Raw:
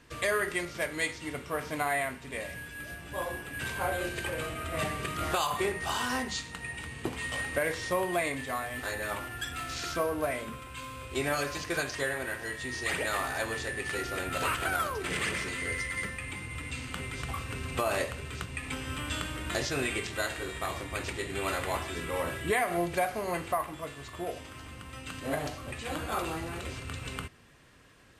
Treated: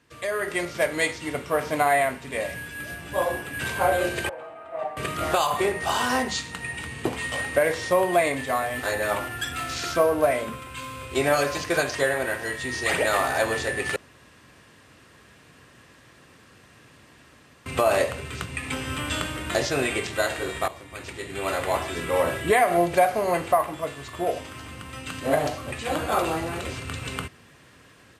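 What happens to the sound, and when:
0:04.29–0:04.97: resonant band-pass 780 Hz, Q 3.5
0:13.96–0:17.66: fill with room tone
0:20.68–0:22.18: fade in, from −14.5 dB
whole clip: high-pass filter 74 Hz; dynamic equaliser 620 Hz, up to +6 dB, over −44 dBFS, Q 1.3; automatic gain control gain up to 11.5 dB; level −5 dB

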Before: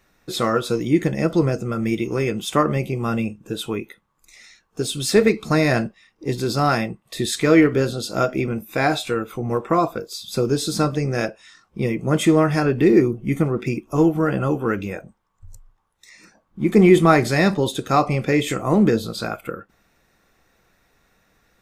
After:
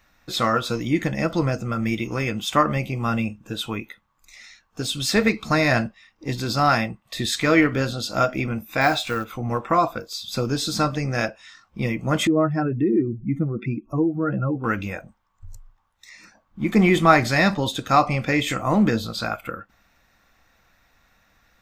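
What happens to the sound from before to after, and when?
0:08.81–0:09.25: log-companded quantiser 6 bits
0:12.27–0:14.64: expanding power law on the bin magnitudes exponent 1.8
whole clip: graphic EQ with 15 bands 160 Hz −6 dB, 400 Hz −12 dB, 10,000 Hz −10 dB; level +2.5 dB

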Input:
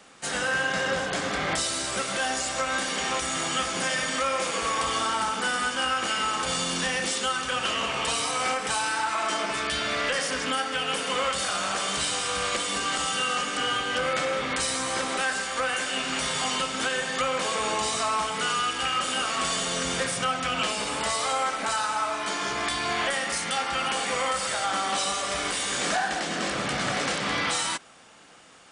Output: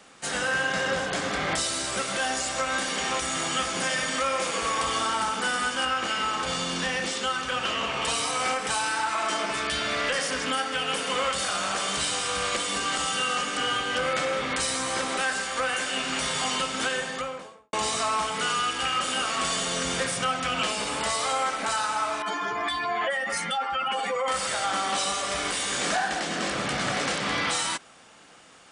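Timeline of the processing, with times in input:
0:05.85–0:08.02: high-frequency loss of the air 52 metres
0:16.87–0:17.73: fade out and dull
0:22.22–0:24.28: expanding power law on the bin magnitudes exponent 2

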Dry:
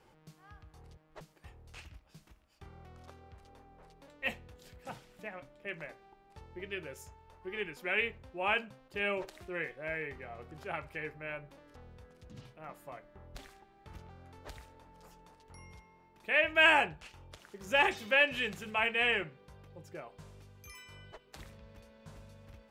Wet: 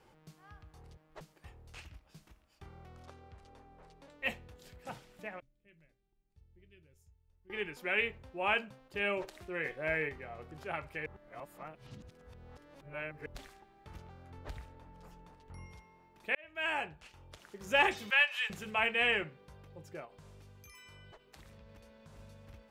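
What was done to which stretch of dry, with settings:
0:03.05–0:04.12: low-pass filter 10,000 Hz
0:05.40–0:07.50: guitar amp tone stack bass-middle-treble 10-0-1
0:09.65–0:10.09: clip gain +4.5 dB
0:11.06–0:13.26: reverse
0:14.30–0:15.66: bass and treble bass +6 dB, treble −6 dB
0:16.35–0:17.50: fade in
0:18.10–0:18.50: high-pass filter 820 Hz 24 dB per octave
0:20.05–0:22.19: downward compressor, threshold −51 dBFS

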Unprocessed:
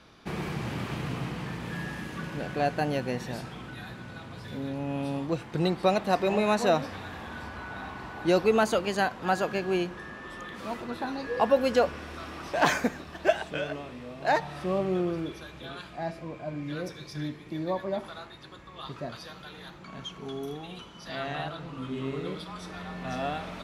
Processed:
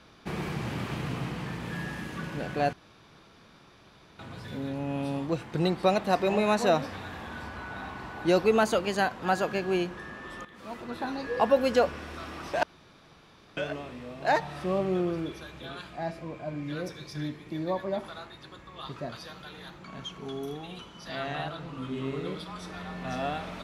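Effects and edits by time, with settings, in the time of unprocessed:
0:02.73–0:04.19: fill with room tone
0:10.45–0:11.06: fade in, from −13 dB
0:12.63–0:13.57: fill with room tone

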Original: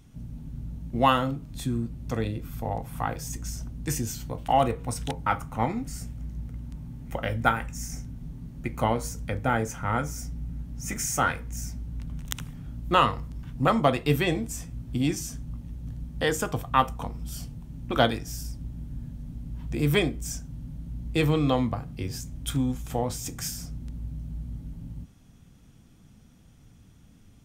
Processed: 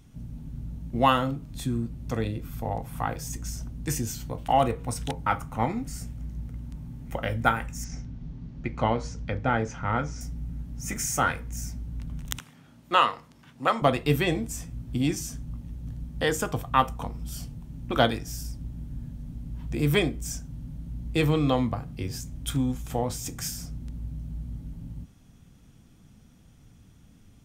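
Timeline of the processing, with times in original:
0:07.84–0:10.21: low-pass filter 5,600 Hz 24 dB per octave
0:12.39–0:13.82: meter weighting curve A

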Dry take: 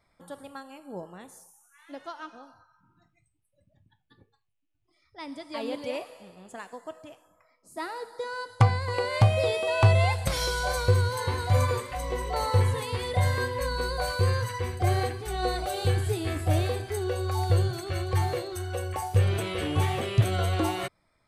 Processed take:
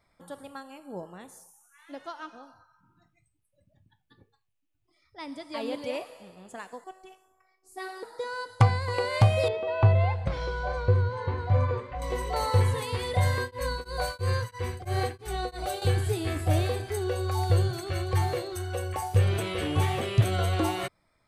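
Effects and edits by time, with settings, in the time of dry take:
0:06.84–0:08.03: phases set to zero 376 Hz
0:09.48–0:12.02: head-to-tape spacing loss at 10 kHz 35 dB
0:13.35–0:15.82: tremolo along a rectified sine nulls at 3 Hz

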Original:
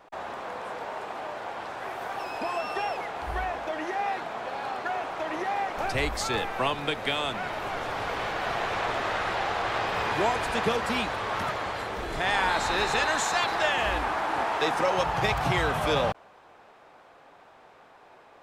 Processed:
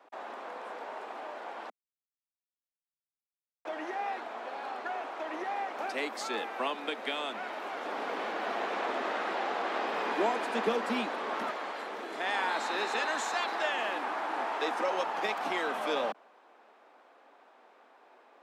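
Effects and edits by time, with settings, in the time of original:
0:01.70–0:03.65: silence
0:07.85–0:11.51: low-shelf EQ 410 Hz +8 dB
whole clip: Butterworth high-pass 220 Hz 48 dB per octave; high-shelf EQ 5,300 Hz −5.5 dB; level −5.5 dB

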